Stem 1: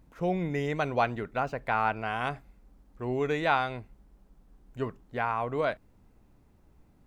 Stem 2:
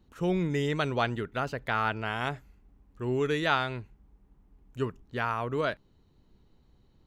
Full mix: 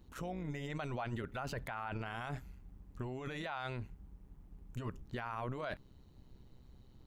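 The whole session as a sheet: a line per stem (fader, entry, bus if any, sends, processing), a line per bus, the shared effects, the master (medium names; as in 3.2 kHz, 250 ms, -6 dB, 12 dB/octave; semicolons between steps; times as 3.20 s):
-16.5 dB, 0.00 s, no send, resonant low shelf 400 Hz -10.5 dB, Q 1.5
-3.0 dB, 0.00 s, no send, treble shelf 5.8 kHz +5.5 dB; compressor with a negative ratio -36 dBFS, ratio -1; AM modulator 130 Hz, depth 50%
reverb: none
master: bass shelf 190 Hz +5 dB; peak limiter -30 dBFS, peak gain reduction 9 dB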